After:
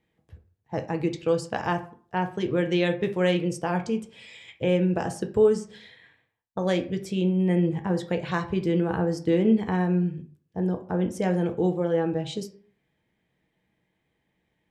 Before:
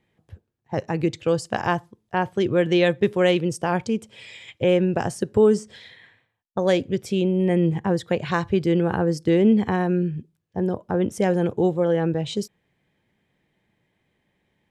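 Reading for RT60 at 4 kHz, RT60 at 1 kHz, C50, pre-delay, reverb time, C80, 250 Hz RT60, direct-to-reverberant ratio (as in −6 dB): 0.30 s, 0.50 s, 13.5 dB, 4 ms, 0.50 s, 18.5 dB, 0.50 s, 5.5 dB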